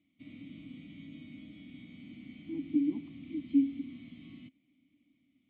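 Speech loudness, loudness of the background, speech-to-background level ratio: -33.0 LUFS, -49.5 LUFS, 16.5 dB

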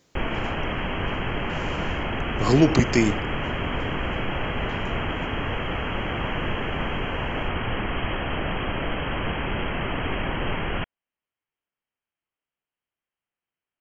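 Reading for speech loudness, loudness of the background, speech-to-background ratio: -21.5 LUFS, -28.0 LUFS, 6.5 dB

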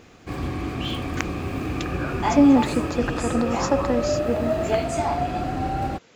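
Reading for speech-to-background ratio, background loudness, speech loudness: 2.5 dB, -26.5 LUFS, -24.0 LUFS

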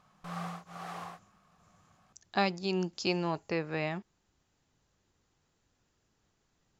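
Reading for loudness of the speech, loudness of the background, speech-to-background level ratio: -33.0 LUFS, -42.5 LUFS, 9.5 dB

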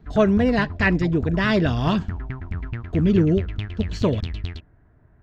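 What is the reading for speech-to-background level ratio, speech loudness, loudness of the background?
10.0 dB, -21.5 LUFS, -31.5 LUFS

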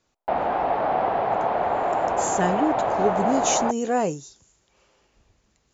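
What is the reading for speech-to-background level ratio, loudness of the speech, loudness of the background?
-1.5 dB, -25.5 LUFS, -24.0 LUFS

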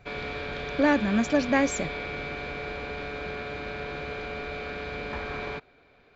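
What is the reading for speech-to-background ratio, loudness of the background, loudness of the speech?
9.0 dB, -34.5 LUFS, -25.5 LUFS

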